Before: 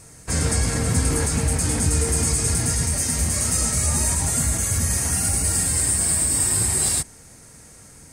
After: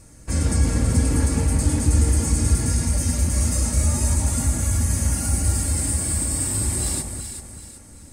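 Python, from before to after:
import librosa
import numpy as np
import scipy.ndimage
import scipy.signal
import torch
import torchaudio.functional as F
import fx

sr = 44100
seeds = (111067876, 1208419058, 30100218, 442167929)

p1 = fx.low_shelf(x, sr, hz=350.0, db=9.5)
p2 = p1 + 0.46 * np.pad(p1, (int(3.5 * sr / 1000.0), 0))[:len(p1)]
p3 = p2 + fx.echo_alternate(p2, sr, ms=190, hz=1300.0, feedback_pct=62, wet_db=-4.0, dry=0)
y = p3 * librosa.db_to_amplitude(-6.5)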